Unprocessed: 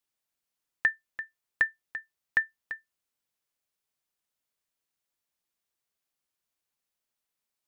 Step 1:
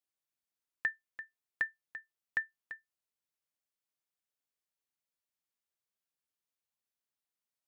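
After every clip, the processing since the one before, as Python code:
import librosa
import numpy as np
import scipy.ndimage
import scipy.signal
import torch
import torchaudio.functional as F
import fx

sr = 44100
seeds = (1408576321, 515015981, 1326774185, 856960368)

y = scipy.signal.sosfilt(scipy.signal.butter(2, 42.0, 'highpass', fs=sr, output='sos'), x)
y = y * librosa.db_to_amplitude(-8.0)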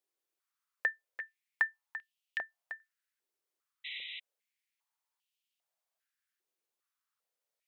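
y = fx.spec_paint(x, sr, seeds[0], shape='noise', start_s=3.84, length_s=0.36, low_hz=1900.0, high_hz=4000.0, level_db=-45.0)
y = fx.filter_held_highpass(y, sr, hz=2.5, low_hz=380.0, high_hz=2900.0)
y = y * librosa.db_to_amplitude(1.0)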